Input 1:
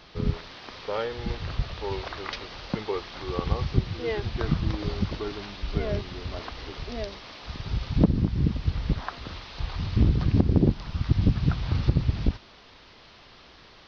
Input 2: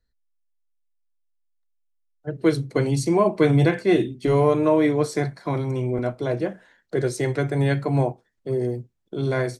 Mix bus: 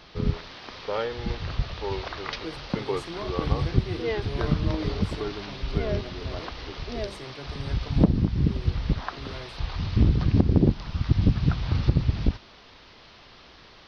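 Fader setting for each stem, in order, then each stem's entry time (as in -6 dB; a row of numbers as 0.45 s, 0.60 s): +1.0 dB, -18.0 dB; 0.00 s, 0.00 s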